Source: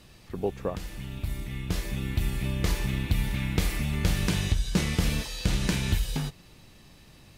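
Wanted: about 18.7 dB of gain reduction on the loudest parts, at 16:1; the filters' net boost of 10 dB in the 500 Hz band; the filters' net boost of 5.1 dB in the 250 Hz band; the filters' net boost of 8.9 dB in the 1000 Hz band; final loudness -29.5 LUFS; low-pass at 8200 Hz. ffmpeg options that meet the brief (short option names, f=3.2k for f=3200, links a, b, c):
-af "lowpass=8.2k,equalizer=f=250:t=o:g=5,equalizer=f=500:t=o:g=9,equalizer=f=1k:t=o:g=8,acompressor=threshold=-35dB:ratio=16,volume=12dB"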